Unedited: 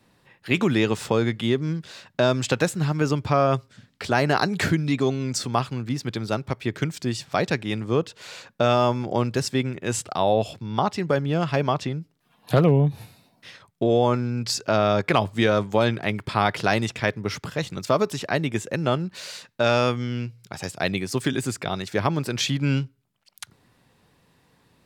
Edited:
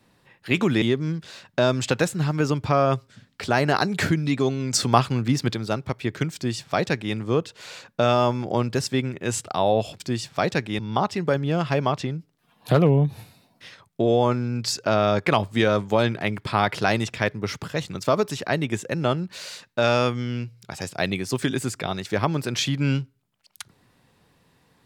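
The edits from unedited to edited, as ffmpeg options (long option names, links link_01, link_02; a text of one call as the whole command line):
ffmpeg -i in.wav -filter_complex "[0:a]asplit=6[link_01][link_02][link_03][link_04][link_05][link_06];[link_01]atrim=end=0.822[link_07];[link_02]atrim=start=1.428:end=5.342[link_08];[link_03]atrim=start=5.338:end=6.152,asetpts=PTS-STARTPTS,volume=5.5dB[link_09];[link_04]atrim=start=6.148:end=10.612[link_10];[link_05]atrim=start=6.958:end=7.752[link_11];[link_06]atrim=start=10.608[link_12];[link_07][link_08]acrossfade=duration=0.004:curve1=hsin:curve2=hsin[link_13];[link_13][link_09]acrossfade=duration=0.004:curve1=hsin:curve2=hsin[link_14];[link_14][link_10]acrossfade=duration=0.004:curve1=hsin:curve2=hsin[link_15];[link_15][link_11]acrossfade=duration=0.004:curve1=hsin:curve2=hsin[link_16];[link_16][link_12]acrossfade=duration=0.004:curve1=hsin:curve2=hsin" out.wav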